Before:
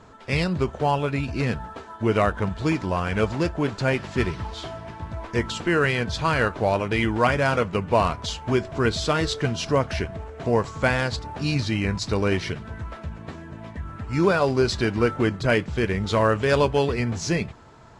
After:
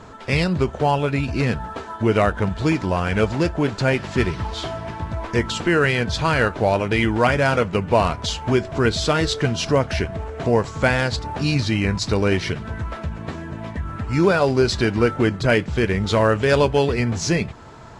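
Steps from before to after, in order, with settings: dynamic bell 1.1 kHz, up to -4 dB, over -41 dBFS, Q 5.6; in parallel at -1 dB: compression, threshold -33 dBFS, peak gain reduction 17 dB; on the sum: trim +2 dB

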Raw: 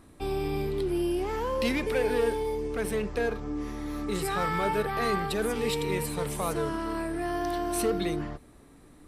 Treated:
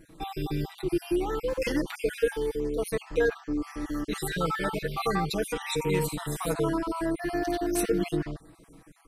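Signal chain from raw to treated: random holes in the spectrogram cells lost 39%; comb 6.2 ms, depth 95%

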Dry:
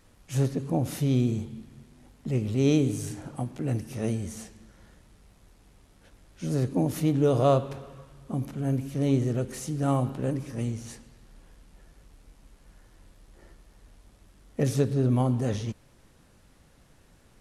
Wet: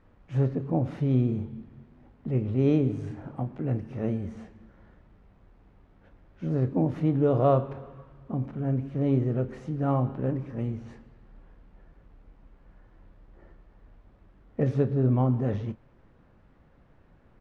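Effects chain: low-pass 1.7 kHz 12 dB/octave; doubling 31 ms -13 dB

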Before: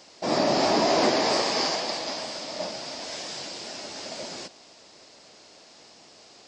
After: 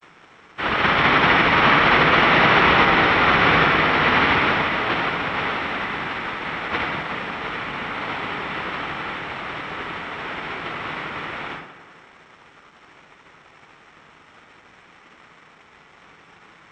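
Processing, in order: high-pass 360 Hz; treble shelf 4.5 kHz +6 dB; noise-vocoded speech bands 1; crossover distortion -52.5 dBFS; wide varispeed 0.387×; tape echo 181 ms, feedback 62%, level -12 dB, low-pass 2.4 kHz; reverberation RT60 0.25 s, pre-delay 72 ms, DRR 5 dB

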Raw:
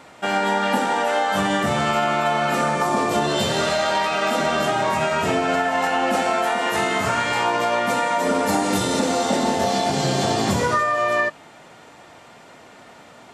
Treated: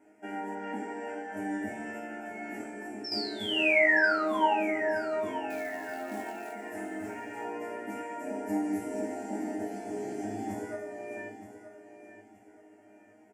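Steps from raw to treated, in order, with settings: ten-band graphic EQ 125 Hz +8 dB, 250 Hz +9 dB, 500 Hz +11 dB, 1 kHz -5 dB, 4 kHz -7 dB; 3.04–4.54 s: painted sound fall 810–5500 Hz -7 dBFS; static phaser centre 770 Hz, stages 8; chord resonator G#2 fifth, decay 0.39 s; 0.55–1.37 s: low-pass 7.3 kHz 12 dB/octave; 2.65–3.12 s: compression, threshold -33 dBFS, peak gain reduction 7.5 dB; 5.50–6.53 s: short-mantissa float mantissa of 2-bit; bass shelf 110 Hz -5 dB; feedback delay 922 ms, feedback 30%, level -12.5 dB; trim -3.5 dB

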